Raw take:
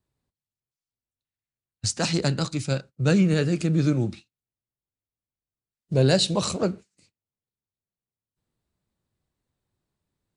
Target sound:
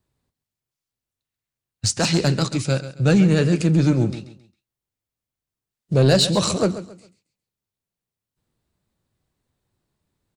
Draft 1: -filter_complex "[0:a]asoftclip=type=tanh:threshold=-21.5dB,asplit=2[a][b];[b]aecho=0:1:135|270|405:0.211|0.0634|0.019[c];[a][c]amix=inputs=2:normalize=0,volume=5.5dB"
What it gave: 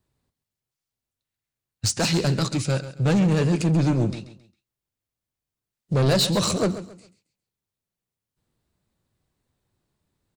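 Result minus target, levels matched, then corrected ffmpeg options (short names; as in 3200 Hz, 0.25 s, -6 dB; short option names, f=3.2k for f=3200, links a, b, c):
soft clip: distortion +9 dB
-filter_complex "[0:a]asoftclip=type=tanh:threshold=-13dB,asplit=2[a][b];[b]aecho=0:1:135|270|405:0.211|0.0634|0.019[c];[a][c]amix=inputs=2:normalize=0,volume=5.5dB"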